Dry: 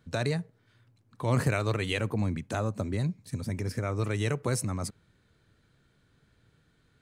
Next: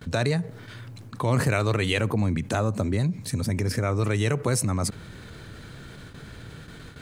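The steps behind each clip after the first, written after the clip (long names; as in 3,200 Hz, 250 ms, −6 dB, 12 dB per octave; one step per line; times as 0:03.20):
noise gate with hold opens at −57 dBFS
envelope flattener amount 50%
level +2 dB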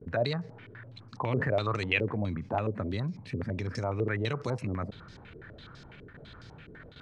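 low-pass on a step sequencer 12 Hz 420–5,300 Hz
level −8.5 dB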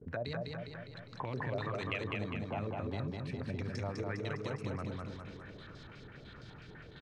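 downward compressor 3 to 1, threshold −32 dBFS, peak gain reduction 8.5 dB
on a send: repeating echo 203 ms, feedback 56%, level −3 dB
on the sum: level −4.5 dB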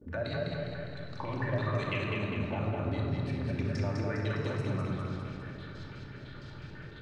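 rectangular room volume 2,400 cubic metres, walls mixed, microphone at 2.5 metres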